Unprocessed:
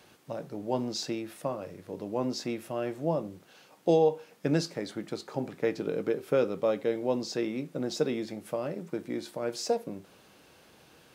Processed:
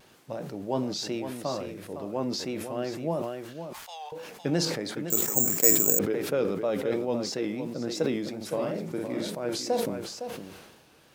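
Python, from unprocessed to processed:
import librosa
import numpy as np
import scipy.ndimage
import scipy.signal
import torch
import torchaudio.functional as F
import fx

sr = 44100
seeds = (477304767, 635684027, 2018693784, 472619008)

p1 = fx.steep_highpass(x, sr, hz=900.0, slope=36, at=(3.22, 4.12))
p2 = fx.rider(p1, sr, range_db=4, speed_s=2.0)
p3 = p1 + (p2 * librosa.db_to_amplitude(0.0))
p4 = fx.dmg_crackle(p3, sr, seeds[0], per_s=500.0, level_db=-50.0)
p5 = fx.vibrato(p4, sr, rate_hz=2.9, depth_cents=79.0)
p6 = fx.doubler(p5, sr, ms=48.0, db=-2.0, at=(8.4, 9.29), fade=0.02)
p7 = p6 + fx.echo_single(p6, sr, ms=510, db=-9.5, dry=0)
p8 = fx.resample_bad(p7, sr, factor=6, down='filtered', up='zero_stuff', at=(5.1, 5.99))
p9 = fx.sustainer(p8, sr, db_per_s=42.0)
y = p9 * librosa.db_to_amplitude(-7.0)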